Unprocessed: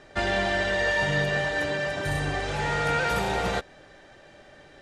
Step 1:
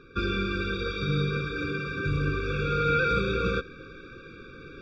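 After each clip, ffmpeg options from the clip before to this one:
-af "lowpass=f=4.3k:w=0.5412,lowpass=f=4.3k:w=1.3066,areverse,acompressor=mode=upward:threshold=-35dB:ratio=2.5,areverse,afftfilt=real='re*eq(mod(floor(b*sr/1024/550),2),0)':imag='im*eq(mod(floor(b*sr/1024/550),2),0)':win_size=1024:overlap=0.75,volume=2.5dB"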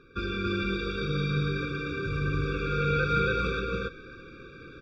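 -af "aecho=1:1:157.4|279.9:0.282|0.891,volume=-4dB"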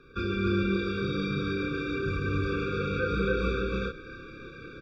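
-filter_complex "[0:a]asplit=2[a][b];[b]adelay=31,volume=-2.5dB[c];[a][c]amix=inputs=2:normalize=0,acrossover=split=450|1300[d][e][f];[f]alimiter=level_in=7.5dB:limit=-24dB:level=0:latency=1:release=245,volume=-7.5dB[g];[d][e][g]amix=inputs=3:normalize=0"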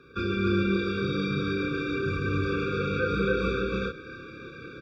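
-af "highpass=74,volume=2dB"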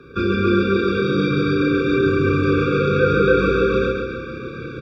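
-filter_complex "[0:a]tiltshelf=f=1.2k:g=3.5,acrossover=split=230[a][b];[a]alimiter=level_in=4.5dB:limit=-24dB:level=0:latency=1:release=442,volume=-4.5dB[c];[c][b]amix=inputs=2:normalize=0,aecho=1:1:136|272|408|544|680|816:0.562|0.281|0.141|0.0703|0.0351|0.0176,volume=8dB"

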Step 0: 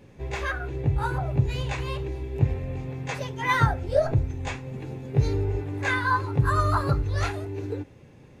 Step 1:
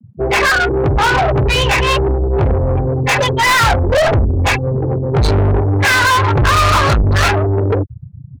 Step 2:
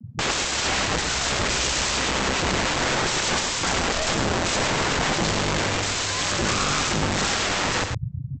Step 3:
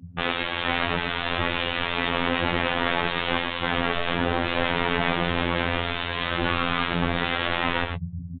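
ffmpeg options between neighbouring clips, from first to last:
-filter_complex "[0:a]afftfilt=real='re*gte(hypot(re,im),0.0224)':imag='im*gte(hypot(re,im),0.0224)':win_size=1024:overlap=0.75,asubboost=boost=11:cutoff=70,asplit=2[a][b];[b]highpass=f=720:p=1,volume=40dB,asoftclip=type=tanh:threshold=-2.5dB[c];[a][c]amix=inputs=2:normalize=0,lowpass=f=7.7k:p=1,volume=-6dB,volume=-2.5dB"
-af "acompressor=threshold=-16dB:ratio=6,aresample=16000,aeval=exprs='(mod(11.2*val(0)+1,2)-1)/11.2':c=same,aresample=44100,aecho=1:1:108:0.473,volume=2.5dB"
-af "flanger=delay=7:depth=1.1:regen=38:speed=1:shape=triangular,aresample=8000,aresample=44100,afftfilt=real='hypot(re,im)*cos(PI*b)':imag='0':win_size=2048:overlap=0.75,volume=6.5dB"

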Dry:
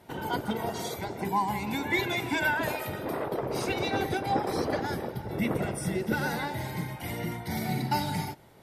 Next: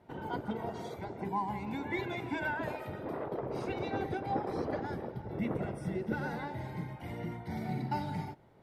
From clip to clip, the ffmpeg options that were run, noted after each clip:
-af "lowpass=f=1.3k:p=1,volume=-5dB"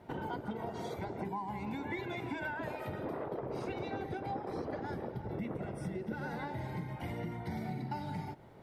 -af "acompressor=threshold=-42dB:ratio=6,volume=6dB"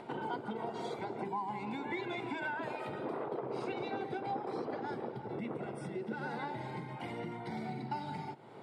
-af "highpass=f=150:w=0.5412,highpass=f=150:w=1.3066,equalizer=f=180:t=q:w=4:g=-9,equalizer=f=290:t=q:w=4:g=-4,equalizer=f=590:t=q:w=4:g=-5,equalizer=f=1.8k:t=q:w=4:g=-5,equalizer=f=6k:t=q:w=4:g=-8,lowpass=f=8.9k:w=0.5412,lowpass=f=8.9k:w=1.3066,acompressor=mode=upward:threshold=-46dB:ratio=2.5,volume=3dB"

